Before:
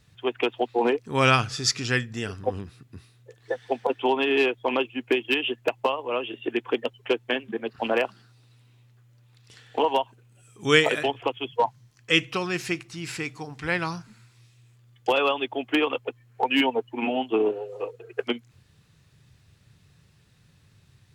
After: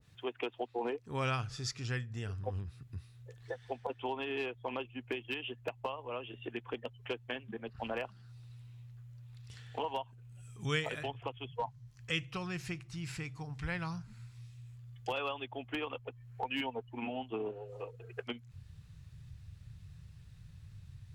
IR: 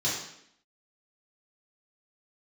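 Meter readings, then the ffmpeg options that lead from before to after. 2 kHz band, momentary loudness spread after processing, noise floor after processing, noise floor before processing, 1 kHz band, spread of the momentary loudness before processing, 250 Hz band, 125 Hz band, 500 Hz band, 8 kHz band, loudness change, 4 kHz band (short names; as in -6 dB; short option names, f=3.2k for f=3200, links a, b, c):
-14.0 dB, 17 LU, -57 dBFS, -60 dBFS, -13.0 dB, 12 LU, -13.5 dB, -5.5 dB, -14.5 dB, -15.0 dB, -14.0 dB, -14.5 dB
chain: -af "asubboost=boost=9.5:cutoff=100,acompressor=threshold=-42dB:ratio=1.5,adynamicequalizer=threshold=0.00398:dfrequency=1500:dqfactor=0.7:tfrequency=1500:tqfactor=0.7:attack=5:release=100:ratio=0.375:range=2:mode=cutabove:tftype=highshelf,volume=-4.5dB"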